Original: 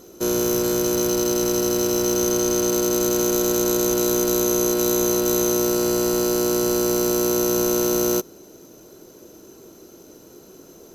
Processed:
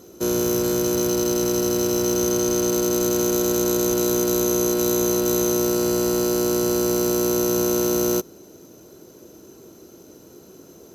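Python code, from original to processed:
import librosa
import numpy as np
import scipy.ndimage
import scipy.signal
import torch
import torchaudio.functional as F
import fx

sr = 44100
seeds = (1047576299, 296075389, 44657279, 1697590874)

y = scipy.signal.sosfilt(scipy.signal.butter(2, 56.0, 'highpass', fs=sr, output='sos'), x)
y = fx.low_shelf(y, sr, hz=220.0, db=5.0)
y = y * librosa.db_to_amplitude(-1.5)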